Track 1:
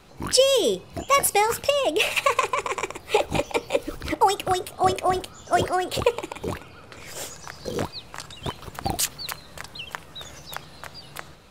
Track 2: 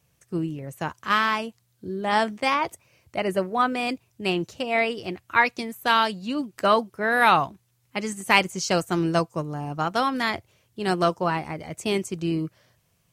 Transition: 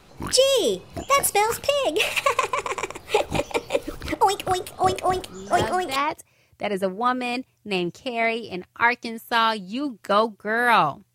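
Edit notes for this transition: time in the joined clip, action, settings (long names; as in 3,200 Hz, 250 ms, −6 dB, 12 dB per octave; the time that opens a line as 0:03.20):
track 1
0:05.03: mix in track 2 from 0:01.57 0.93 s −8 dB
0:05.96: continue with track 2 from 0:02.50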